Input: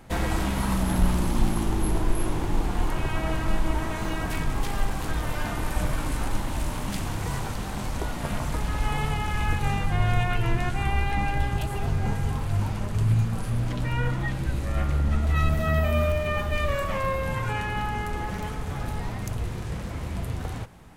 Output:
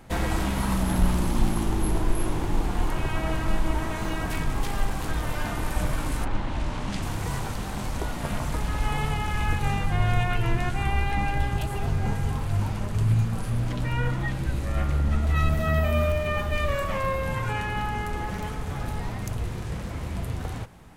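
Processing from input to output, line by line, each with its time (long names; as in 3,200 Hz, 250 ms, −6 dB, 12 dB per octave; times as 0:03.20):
0:06.24–0:07.01: low-pass filter 3,000 Hz → 7,000 Hz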